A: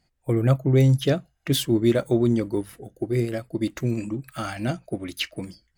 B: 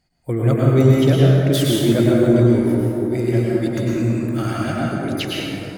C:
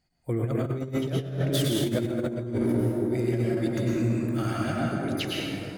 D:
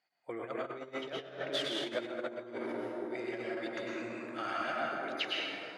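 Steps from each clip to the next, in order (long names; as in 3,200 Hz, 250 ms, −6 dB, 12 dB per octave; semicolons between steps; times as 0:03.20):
dense smooth reverb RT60 3.1 s, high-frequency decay 0.4×, pre-delay 90 ms, DRR −5.5 dB
compressor whose output falls as the input rises −17 dBFS, ratio −0.5; level −8 dB
band-pass filter 700–3,400 Hz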